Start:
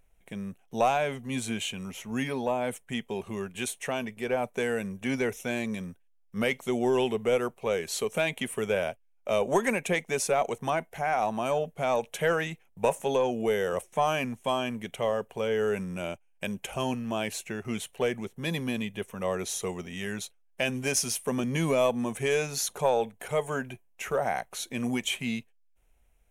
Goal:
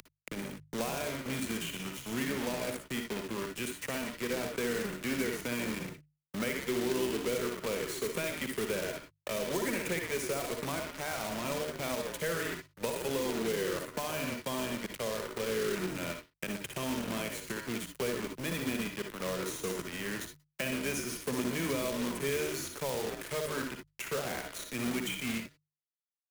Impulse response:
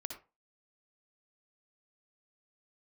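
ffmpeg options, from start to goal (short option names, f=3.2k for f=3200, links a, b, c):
-filter_complex "[0:a]acompressor=mode=upward:threshold=-29dB:ratio=2.5,asplit=5[a][b][c][d][e];[b]adelay=118,afreqshift=-57,volume=-9dB[f];[c]adelay=236,afreqshift=-114,volume=-17.4dB[g];[d]adelay=354,afreqshift=-171,volume=-25.8dB[h];[e]adelay=472,afreqshift=-228,volume=-34.2dB[i];[a][f][g][h][i]amix=inputs=5:normalize=0,acrusher=bits=4:mix=0:aa=0.5[j];[1:a]atrim=start_sample=2205,atrim=end_sample=3528[k];[j][k]afir=irnorm=-1:irlink=0,acrossover=split=120|280|2600|7500[l][m][n][o][p];[l]acompressor=threshold=-53dB:ratio=4[q];[m]acompressor=threshold=-38dB:ratio=4[r];[n]acompressor=threshold=-31dB:ratio=4[s];[o]acompressor=threshold=-48dB:ratio=4[t];[p]acompressor=threshold=-44dB:ratio=4[u];[q][r][s][t][u]amix=inputs=5:normalize=0,acrusher=bits=2:mode=log:mix=0:aa=0.000001,equalizer=f=750:t=o:w=0.63:g=-8.5,bandreject=f=50:t=h:w=6,bandreject=f=100:t=h:w=6,bandreject=f=150:t=h:w=6"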